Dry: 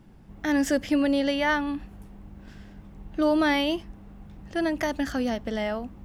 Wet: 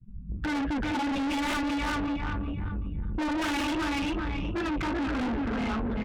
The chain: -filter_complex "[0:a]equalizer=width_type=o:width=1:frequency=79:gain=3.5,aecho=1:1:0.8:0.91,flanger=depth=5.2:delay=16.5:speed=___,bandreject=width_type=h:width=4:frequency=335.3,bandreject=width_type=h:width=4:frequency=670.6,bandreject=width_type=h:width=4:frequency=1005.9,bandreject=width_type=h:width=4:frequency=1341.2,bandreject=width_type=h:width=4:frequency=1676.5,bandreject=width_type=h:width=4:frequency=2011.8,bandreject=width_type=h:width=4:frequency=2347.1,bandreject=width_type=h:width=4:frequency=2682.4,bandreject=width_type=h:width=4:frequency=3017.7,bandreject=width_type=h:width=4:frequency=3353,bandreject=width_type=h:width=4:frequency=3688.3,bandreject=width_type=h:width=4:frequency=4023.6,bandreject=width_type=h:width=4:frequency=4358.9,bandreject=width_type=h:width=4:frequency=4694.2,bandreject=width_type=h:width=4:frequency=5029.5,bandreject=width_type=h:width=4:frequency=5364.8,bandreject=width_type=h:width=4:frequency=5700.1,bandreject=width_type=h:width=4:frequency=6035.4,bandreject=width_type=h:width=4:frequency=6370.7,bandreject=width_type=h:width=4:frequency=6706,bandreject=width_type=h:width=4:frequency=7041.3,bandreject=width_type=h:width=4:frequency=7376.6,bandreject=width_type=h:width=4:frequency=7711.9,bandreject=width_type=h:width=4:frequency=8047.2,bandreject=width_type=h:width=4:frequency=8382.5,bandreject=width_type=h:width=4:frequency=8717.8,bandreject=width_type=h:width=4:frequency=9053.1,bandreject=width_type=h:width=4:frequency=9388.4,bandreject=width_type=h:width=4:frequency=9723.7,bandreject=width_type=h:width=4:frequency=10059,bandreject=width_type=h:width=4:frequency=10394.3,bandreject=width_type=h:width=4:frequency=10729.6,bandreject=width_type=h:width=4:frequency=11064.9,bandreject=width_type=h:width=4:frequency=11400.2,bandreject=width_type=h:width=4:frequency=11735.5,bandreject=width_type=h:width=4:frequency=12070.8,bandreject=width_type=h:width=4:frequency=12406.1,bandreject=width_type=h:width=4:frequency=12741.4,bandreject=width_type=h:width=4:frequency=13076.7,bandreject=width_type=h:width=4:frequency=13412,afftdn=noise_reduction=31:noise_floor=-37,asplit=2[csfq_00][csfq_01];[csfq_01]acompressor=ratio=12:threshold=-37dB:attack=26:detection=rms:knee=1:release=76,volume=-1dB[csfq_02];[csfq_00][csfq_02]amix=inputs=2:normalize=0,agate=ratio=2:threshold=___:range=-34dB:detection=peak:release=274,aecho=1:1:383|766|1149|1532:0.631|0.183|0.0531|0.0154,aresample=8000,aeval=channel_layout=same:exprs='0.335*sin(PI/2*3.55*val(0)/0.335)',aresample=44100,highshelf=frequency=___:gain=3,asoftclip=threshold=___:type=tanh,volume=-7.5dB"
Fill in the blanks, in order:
2.8, -39dB, 3000, -20dB